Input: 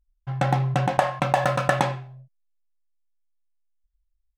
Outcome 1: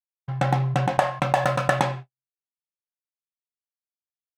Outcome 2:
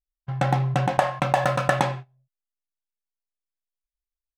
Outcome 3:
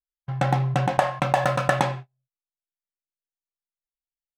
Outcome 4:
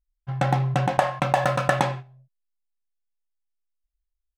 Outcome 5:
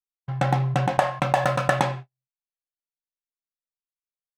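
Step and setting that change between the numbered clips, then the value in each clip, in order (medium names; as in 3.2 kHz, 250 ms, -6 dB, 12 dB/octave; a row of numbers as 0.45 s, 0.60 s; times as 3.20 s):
gate, range: -59 dB, -20 dB, -34 dB, -8 dB, -46 dB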